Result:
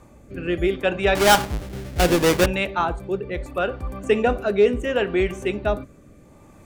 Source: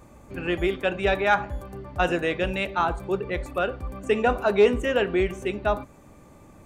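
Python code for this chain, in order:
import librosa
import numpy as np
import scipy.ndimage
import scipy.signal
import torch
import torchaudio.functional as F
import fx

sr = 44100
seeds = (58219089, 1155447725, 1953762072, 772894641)

y = fx.halfwave_hold(x, sr, at=(1.15, 2.46))
y = fx.rotary(y, sr, hz=0.7)
y = y * 10.0 ** (4.0 / 20.0)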